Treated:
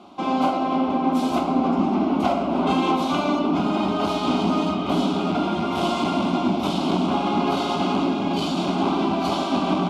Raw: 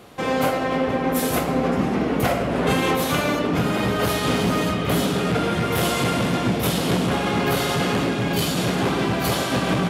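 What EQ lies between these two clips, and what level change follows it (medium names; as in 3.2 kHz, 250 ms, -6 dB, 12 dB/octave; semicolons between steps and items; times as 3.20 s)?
high-pass 120 Hz 12 dB/octave; low-pass 3.4 kHz 12 dB/octave; static phaser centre 480 Hz, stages 6; +3.5 dB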